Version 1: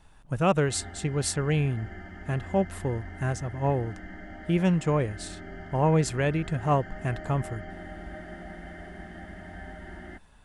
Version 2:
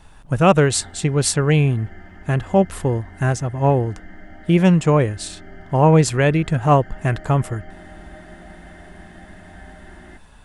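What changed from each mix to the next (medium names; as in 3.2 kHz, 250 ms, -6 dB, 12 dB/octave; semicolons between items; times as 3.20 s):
speech +9.5 dB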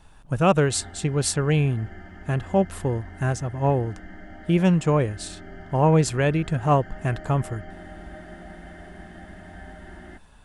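speech -5.0 dB; master: add peaking EQ 2 kHz -3.5 dB 0.21 oct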